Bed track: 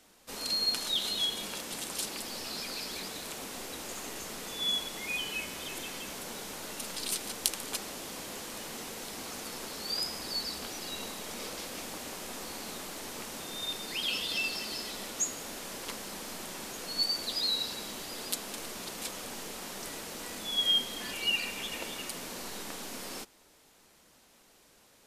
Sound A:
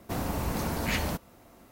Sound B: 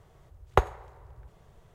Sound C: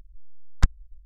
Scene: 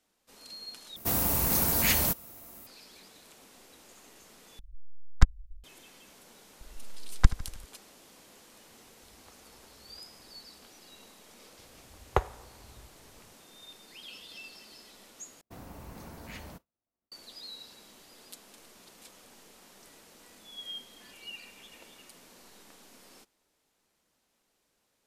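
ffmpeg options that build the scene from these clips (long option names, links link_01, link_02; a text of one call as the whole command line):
ffmpeg -i bed.wav -i cue0.wav -i cue1.wav -i cue2.wav -filter_complex "[1:a]asplit=2[link_01][link_02];[3:a]asplit=2[link_03][link_04];[2:a]asplit=2[link_05][link_06];[0:a]volume=-14.5dB[link_07];[link_01]aemphasis=mode=production:type=75fm[link_08];[link_04]aecho=1:1:78|156|234|312|390:0.158|0.0903|0.0515|0.0294|0.0167[link_09];[link_05]acompressor=threshold=-45dB:ratio=6:attack=3.2:release=140:knee=1:detection=peak[link_10];[link_02]agate=range=-33dB:threshold=-41dB:ratio=3:release=100:detection=peak[link_11];[link_07]asplit=4[link_12][link_13][link_14][link_15];[link_12]atrim=end=0.964[link_16];[link_08]atrim=end=1.71,asetpts=PTS-STARTPTS,volume=-0.5dB[link_17];[link_13]atrim=start=2.666:end=4.594[link_18];[link_03]atrim=end=1.05[link_19];[link_14]atrim=start=5.636:end=15.414[link_20];[link_11]atrim=end=1.71,asetpts=PTS-STARTPTS,volume=-15.5dB[link_21];[link_15]atrim=start=17.116[link_22];[link_09]atrim=end=1.05,asetpts=PTS-STARTPTS,volume=-0.5dB,afade=type=in:duration=0.004:curve=hsin,afade=type=out:start_time=1.046:duration=0.004:curve=hsin,adelay=6610[link_23];[link_10]atrim=end=1.74,asetpts=PTS-STARTPTS,volume=-14dB,afade=type=in:duration=0.004:curve=hsin,afade=type=out:start_time=1.736:duration=0.004:curve=hsin,adelay=8710[link_24];[link_06]atrim=end=1.74,asetpts=PTS-STARTPTS,volume=-4.5dB,afade=type=in:duration=0.004:curve=hsin,afade=type=out:start_time=1.736:duration=0.004:curve=hsin,adelay=11590[link_25];[link_16][link_17]acrossfade=duration=0.004:curve1=hsin:curve2=hsin[link_26];[link_26][link_18]acrossfade=duration=0.004:curve1=hsin:curve2=hsin[link_27];[link_27][link_19]acrossfade=duration=0.004:curve1=hsin:curve2=hsin[link_28];[link_28][link_20]acrossfade=duration=0.004:curve1=hsin:curve2=hsin[link_29];[link_29][link_21]acrossfade=duration=0.004:curve1=hsin:curve2=hsin[link_30];[link_30][link_22]acrossfade=duration=0.004:curve1=hsin:curve2=hsin[link_31];[link_31][link_23][link_24][link_25]amix=inputs=4:normalize=0" out.wav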